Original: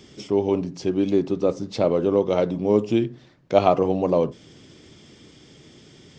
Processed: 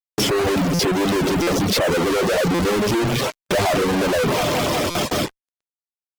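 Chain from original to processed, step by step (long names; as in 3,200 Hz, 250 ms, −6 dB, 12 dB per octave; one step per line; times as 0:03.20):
spectral magnitudes quantised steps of 15 dB
high-shelf EQ 4,400 Hz −3 dB
on a send: delay with a high-pass on its return 180 ms, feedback 85%, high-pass 1,600 Hz, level −13 dB
on the sum: soft clipping −20 dBFS, distortion −8 dB
noise gate with hold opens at −36 dBFS
fuzz pedal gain 56 dB, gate −59 dBFS
parametric band 470 Hz +2.5 dB
harmonic generator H 7 −14 dB, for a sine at −9 dBFS
reverb reduction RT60 0.54 s
buffer that repeats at 0:00.74/0:01.42/0:02.54/0:04.90, samples 256, times 8
level −6 dB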